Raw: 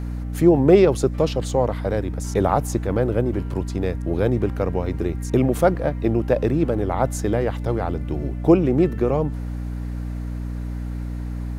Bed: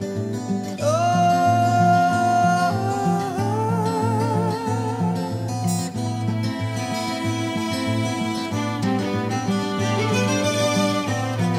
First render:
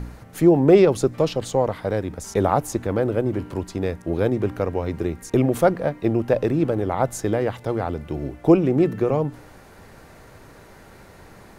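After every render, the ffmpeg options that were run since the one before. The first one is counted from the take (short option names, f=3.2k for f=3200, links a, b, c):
-af "bandreject=f=60:t=h:w=4,bandreject=f=120:t=h:w=4,bandreject=f=180:t=h:w=4,bandreject=f=240:t=h:w=4,bandreject=f=300:t=h:w=4"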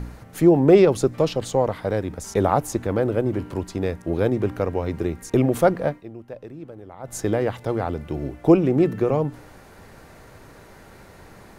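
-filter_complex "[0:a]asplit=3[a][b][c];[a]atrim=end=6.04,asetpts=PTS-STARTPTS,afade=t=out:st=5.9:d=0.14:silence=0.133352[d];[b]atrim=start=6.04:end=7.03,asetpts=PTS-STARTPTS,volume=-17.5dB[e];[c]atrim=start=7.03,asetpts=PTS-STARTPTS,afade=t=in:d=0.14:silence=0.133352[f];[d][e][f]concat=n=3:v=0:a=1"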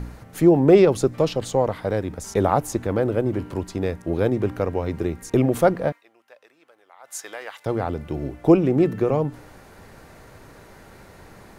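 -filter_complex "[0:a]asettb=1/sr,asplit=3[a][b][c];[a]atrim=end=5.924[d];[b]atrim=start=5.92:end=7.66,asetpts=PTS-STARTPTS,afade=t=in:d=0.004:c=qsin,afade=t=out:st=1.736:d=0.004:c=qsin,highpass=1.2k[e];[c]atrim=start=7.656[f];[d][e]acrossfade=d=0.004:c1=hsin:c2=qsin[g];[g][f]acrossfade=d=0.004:c1=qsin:c2=hsin"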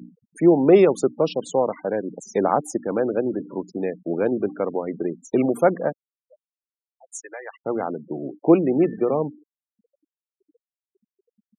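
-af "highpass=f=180:w=0.5412,highpass=f=180:w=1.3066,afftfilt=real='re*gte(hypot(re,im),0.0316)':imag='im*gte(hypot(re,im),0.0316)':win_size=1024:overlap=0.75"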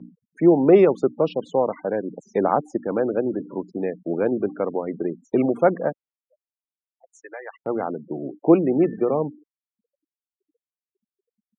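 -af "agate=range=-11dB:threshold=-49dB:ratio=16:detection=peak,lowpass=2.6k"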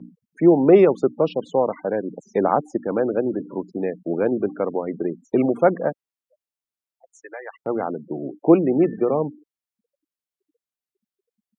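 -af "volume=1dB"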